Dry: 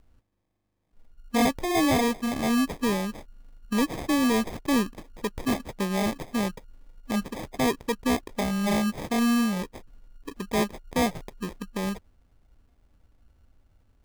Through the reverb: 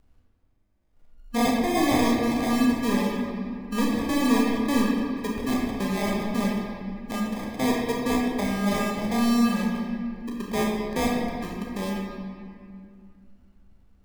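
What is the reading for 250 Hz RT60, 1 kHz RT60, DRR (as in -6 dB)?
3.1 s, 2.2 s, -2.0 dB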